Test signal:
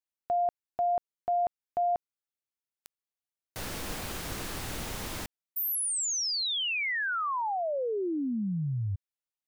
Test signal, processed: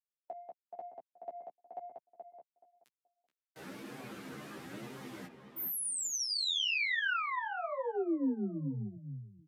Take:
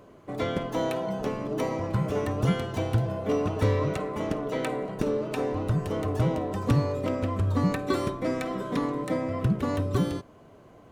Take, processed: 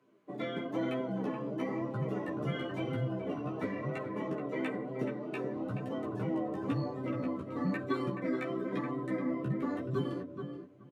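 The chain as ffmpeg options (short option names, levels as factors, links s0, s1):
-filter_complex "[0:a]acrossover=split=180|3700[s0][s1][s2];[s1]aeval=exprs='0.237*sin(PI/2*1.41*val(0)/0.237)':c=same[s3];[s0][s3][s2]amix=inputs=3:normalize=0,afftdn=nr=13:nf=-30,aresample=32000,aresample=44100,acompressor=threshold=0.0562:ratio=4:attack=96:release=104:knee=6:detection=peak,adynamicequalizer=threshold=0.00708:dfrequency=220:dqfactor=4.8:tfrequency=220:tqfactor=4.8:attack=5:release=100:ratio=0.4:range=2.5:mode=cutabove:tftype=bell,asplit=2[s4][s5];[s5]adelay=15,volume=0.708[s6];[s4][s6]amix=inputs=2:normalize=0,asplit=2[s7][s8];[s8]adelay=427,lowpass=f=1900:p=1,volume=0.501,asplit=2[s9][s10];[s10]adelay=427,lowpass=f=1900:p=1,volume=0.2,asplit=2[s11][s12];[s12]adelay=427,lowpass=f=1900:p=1,volume=0.2[s13];[s7][s9][s11][s13]amix=inputs=4:normalize=0,flanger=delay=7.7:depth=5.7:regen=-5:speed=1:shape=sinusoidal,highpass=f=140:w=0.5412,highpass=f=140:w=1.3066,equalizer=f=690:t=o:w=1.8:g=-8.5,volume=0.631"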